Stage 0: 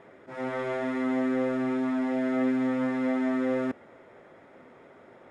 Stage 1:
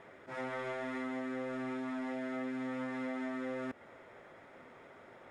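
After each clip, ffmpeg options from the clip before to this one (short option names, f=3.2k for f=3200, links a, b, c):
-af "equalizer=f=280:t=o:w=2.9:g=-6.5,acompressor=threshold=-37dB:ratio=6,volume=1dB"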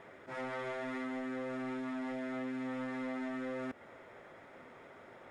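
-af "asoftclip=type=tanh:threshold=-33dB,volume=1dB"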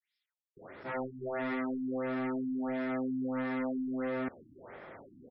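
-filter_complex "[0:a]acrossover=split=5300[a][b];[a]adelay=570[c];[c][b]amix=inputs=2:normalize=0,afftfilt=real='re*lt(b*sr/1024,320*pow(5500/320,0.5+0.5*sin(2*PI*1.5*pts/sr)))':imag='im*lt(b*sr/1024,320*pow(5500/320,0.5+0.5*sin(2*PI*1.5*pts/sr)))':win_size=1024:overlap=0.75,volume=5.5dB"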